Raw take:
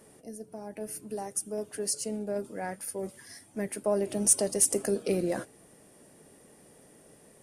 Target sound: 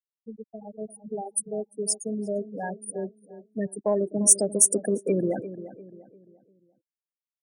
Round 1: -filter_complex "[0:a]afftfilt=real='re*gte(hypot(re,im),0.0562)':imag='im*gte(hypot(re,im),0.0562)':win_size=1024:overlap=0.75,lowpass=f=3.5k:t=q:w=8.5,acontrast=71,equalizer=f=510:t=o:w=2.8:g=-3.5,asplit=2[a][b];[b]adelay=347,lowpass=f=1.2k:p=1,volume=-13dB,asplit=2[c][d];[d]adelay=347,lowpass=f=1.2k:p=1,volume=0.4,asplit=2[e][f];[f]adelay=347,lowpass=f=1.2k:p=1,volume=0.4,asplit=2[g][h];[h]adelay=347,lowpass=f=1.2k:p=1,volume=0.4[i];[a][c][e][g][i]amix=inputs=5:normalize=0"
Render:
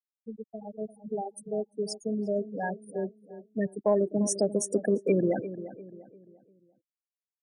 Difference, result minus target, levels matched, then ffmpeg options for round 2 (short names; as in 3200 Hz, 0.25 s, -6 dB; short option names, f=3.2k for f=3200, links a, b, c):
4000 Hz band +3.0 dB
-filter_complex "[0:a]afftfilt=real='re*gte(hypot(re,im),0.0562)':imag='im*gte(hypot(re,im),0.0562)':win_size=1024:overlap=0.75,acontrast=71,equalizer=f=510:t=o:w=2.8:g=-3.5,asplit=2[a][b];[b]adelay=347,lowpass=f=1.2k:p=1,volume=-13dB,asplit=2[c][d];[d]adelay=347,lowpass=f=1.2k:p=1,volume=0.4,asplit=2[e][f];[f]adelay=347,lowpass=f=1.2k:p=1,volume=0.4,asplit=2[g][h];[h]adelay=347,lowpass=f=1.2k:p=1,volume=0.4[i];[a][c][e][g][i]amix=inputs=5:normalize=0"